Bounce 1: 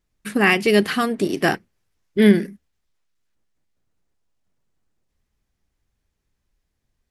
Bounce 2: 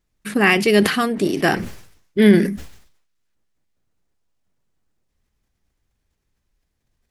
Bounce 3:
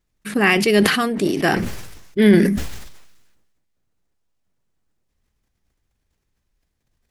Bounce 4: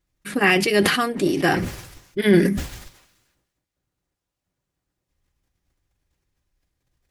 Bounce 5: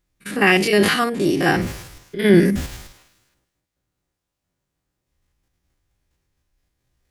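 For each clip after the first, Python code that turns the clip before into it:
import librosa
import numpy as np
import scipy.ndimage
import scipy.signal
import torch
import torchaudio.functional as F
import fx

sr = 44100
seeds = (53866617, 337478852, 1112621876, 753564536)

y1 = fx.sustainer(x, sr, db_per_s=79.0)
y1 = y1 * librosa.db_to_amplitude(1.0)
y2 = fx.sustainer(y1, sr, db_per_s=46.0)
y2 = y2 * librosa.db_to_amplitude(-1.0)
y3 = fx.notch_comb(y2, sr, f0_hz=220.0)
y4 = fx.spec_steps(y3, sr, hold_ms=50)
y4 = y4 * librosa.db_to_amplitude(3.5)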